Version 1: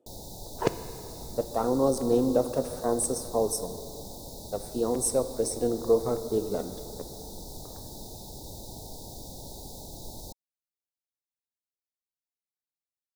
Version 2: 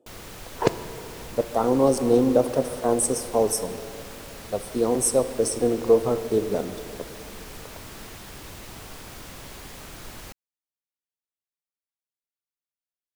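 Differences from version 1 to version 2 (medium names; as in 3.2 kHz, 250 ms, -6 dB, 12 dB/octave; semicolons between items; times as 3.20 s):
speech +5.0 dB; background: remove Chebyshev band-stop 900–3700 Hz, order 5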